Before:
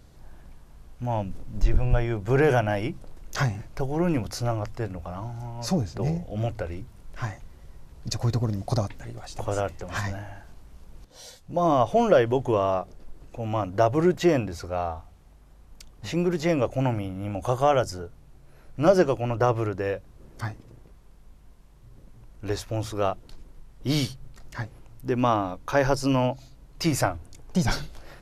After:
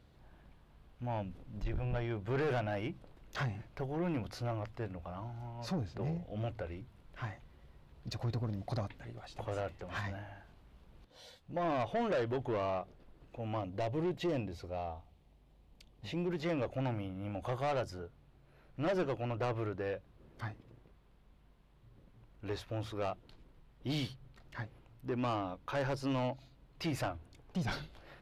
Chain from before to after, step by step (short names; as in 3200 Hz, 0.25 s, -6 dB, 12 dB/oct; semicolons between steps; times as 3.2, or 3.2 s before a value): HPF 58 Hz 6 dB/oct; resonant high shelf 4700 Hz -8.5 dB, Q 1.5; soft clip -21 dBFS, distortion -10 dB; 13.59–16.31 bell 1400 Hz -9 dB 0.92 oct; gain -8 dB